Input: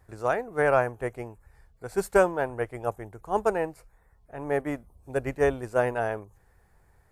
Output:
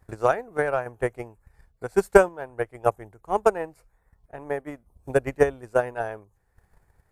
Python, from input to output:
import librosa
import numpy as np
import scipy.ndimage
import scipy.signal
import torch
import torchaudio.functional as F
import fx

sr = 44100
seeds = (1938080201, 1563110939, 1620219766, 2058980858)

y = fx.tremolo_random(x, sr, seeds[0], hz=3.5, depth_pct=55)
y = fx.transient(y, sr, attack_db=11, sustain_db=-3)
y = y * librosa.db_to_amplitude(-1.5)